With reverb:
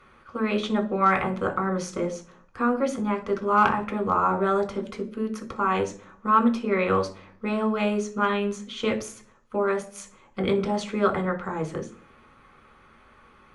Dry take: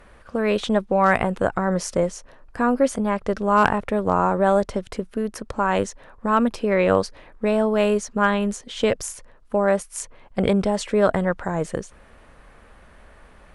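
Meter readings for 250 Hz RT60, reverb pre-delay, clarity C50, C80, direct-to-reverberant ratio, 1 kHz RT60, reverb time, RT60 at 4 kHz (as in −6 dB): 0.65 s, 3 ms, 14.5 dB, 19.0 dB, 2.5 dB, 0.40 s, 0.45 s, 0.45 s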